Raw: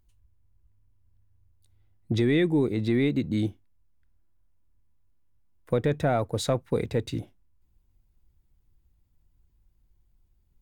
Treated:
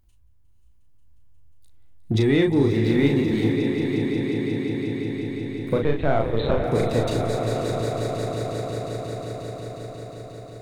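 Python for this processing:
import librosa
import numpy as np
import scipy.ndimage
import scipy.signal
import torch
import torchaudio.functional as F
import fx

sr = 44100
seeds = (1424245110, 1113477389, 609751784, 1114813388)

p1 = x + fx.echo_swell(x, sr, ms=179, loudest=5, wet_db=-12.5, dry=0)
p2 = fx.backlash(p1, sr, play_db=-47.0, at=(2.69, 3.49))
p3 = fx.lpc_vocoder(p2, sr, seeds[0], excitation='pitch_kept', order=10, at=(5.83, 6.64))
p4 = np.clip(p3, -10.0 ** (-21.0 / 20.0), 10.0 ** (-21.0 / 20.0))
p5 = p3 + (p4 * librosa.db_to_amplitude(-7.5))
p6 = fx.doubler(p5, sr, ms=36.0, db=-4)
y = fx.echo_diffused(p6, sr, ms=530, feedback_pct=42, wet_db=-8)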